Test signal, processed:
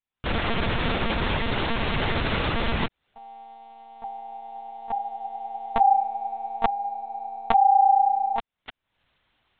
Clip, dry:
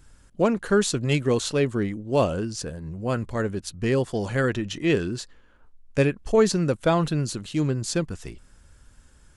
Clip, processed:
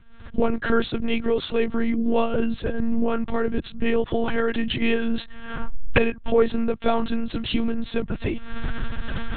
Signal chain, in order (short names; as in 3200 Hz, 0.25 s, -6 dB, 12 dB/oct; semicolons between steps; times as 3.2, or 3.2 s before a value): recorder AGC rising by 62 dB/s; monotone LPC vocoder at 8 kHz 230 Hz